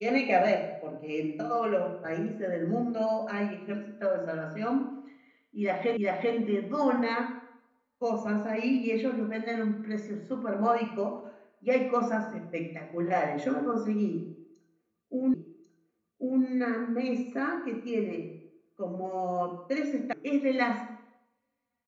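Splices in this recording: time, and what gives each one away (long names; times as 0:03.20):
0:05.97: the same again, the last 0.39 s
0:15.34: the same again, the last 1.09 s
0:20.13: cut off before it has died away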